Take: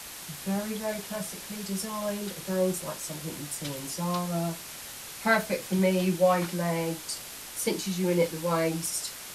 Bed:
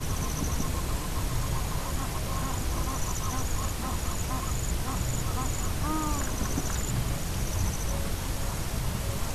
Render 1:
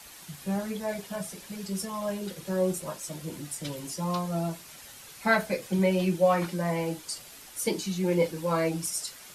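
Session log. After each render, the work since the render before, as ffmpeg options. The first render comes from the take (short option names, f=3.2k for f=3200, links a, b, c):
-af "afftdn=nr=8:nf=-42"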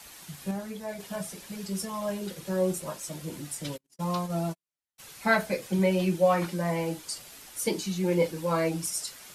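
-filter_complex "[0:a]asplit=3[a][b][c];[a]afade=t=out:st=3.76:d=0.02[d];[b]agate=range=-50dB:threshold=-34dB:ratio=16:release=100:detection=peak,afade=t=in:st=3.76:d=0.02,afade=t=out:st=4.98:d=0.02[e];[c]afade=t=in:st=4.98:d=0.02[f];[d][e][f]amix=inputs=3:normalize=0,asplit=3[g][h][i];[g]atrim=end=0.512[j];[h]atrim=start=0.508:end=1.002,asetpts=PTS-STARTPTS,volume=-4.5dB[k];[i]atrim=start=0.998[l];[j][k]acrossfade=d=0.004:c1=hsin:c2=hsin[m];[m][l]acrossfade=d=0.004:c1=hsin:c2=hsin"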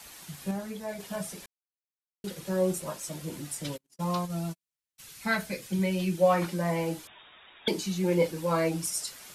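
-filter_complex "[0:a]asettb=1/sr,asplit=3[a][b][c];[a]atrim=end=4.254[d];[b]atrim=start=4.25:end=6.18,asetpts=PTS-STARTPTS,afade=t=in:d=0.004:c=qsin,afade=t=out:st=1.926:d=0.004:c=qsin,equalizer=f=660:w=0.61:g=-9[e];[c]atrim=start=6.176[f];[d][e]acrossfade=d=0.004:c1=hsin:c2=qsin[g];[g][f]acrossfade=d=0.004:c1=qsin:c2=hsin,asettb=1/sr,asplit=3[h][i][j];[h]atrim=end=7.074[k];[i]atrim=start=7.07:end=7.68,asetpts=PTS-STARTPTS,afade=t=in:d=0.004:c=qsin,afade=t=out:st=0.606:d=0.004:c=qsin,lowpass=f=3.2k:t=q:w=0.5098,lowpass=f=3.2k:t=q:w=0.6013,lowpass=f=3.2k:t=q:w=0.9,lowpass=f=3.2k:t=q:w=2.563,afreqshift=-3800[l];[j]atrim=start=7.676[m];[k][l]acrossfade=d=0.004:c1=hsin:c2=qsin[n];[n][m]acrossfade=d=0.004:c1=qsin:c2=hsin,asplit=3[o][p][q];[o]atrim=end=1.46,asetpts=PTS-STARTPTS,afade=t=out:st=1.456:d=0.004:c=hsin[r];[p]atrim=start=1.46:end=2.24,asetpts=PTS-STARTPTS,volume=0[s];[q]atrim=start=2.24,asetpts=PTS-STARTPTS,afade=t=in:d=0.004:c=hsin[t];[r][s][t]concat=n=3:v=0:a=1"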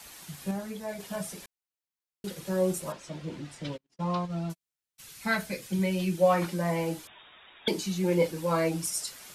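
-filter_complex "[0:a]asettb=1/sr,asplit=3[a][b][c];[a]atrim=end=2.924[d];[b]atrim=start=2.92:end=4.5,asetpts=PTS-STARTPTS,afade=t=in:d=0.004:c=qsin,afade=t=out:st=1.576:d=0.004:c=qsin,lowpass=3.8k[e];[c]atrim=start=4.496[f];[d][e]acrossfade=d=0.004:c1=hsin:c2=qsin[g];[g][f]acrossfade=d=0.004:c1=qsin:c2=hsin"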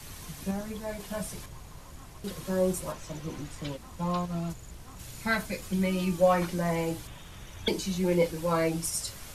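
-filter_complex "[1:a]volume=-16dB[a];[0:a][a]amix=inputs=2:normalize=0"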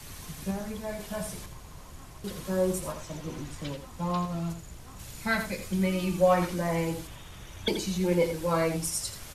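-af "aecho=1:1:84:0.355"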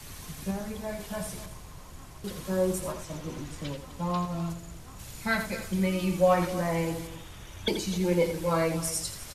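-af "aecho=1:1:254:0.178"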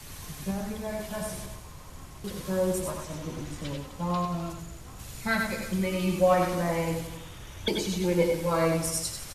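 -af "aecho=1:1:98:0.531"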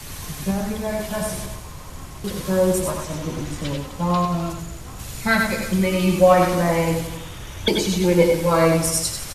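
-af "volume=8.5dB,alimiter=limit=-3dB:level=0:latency=1"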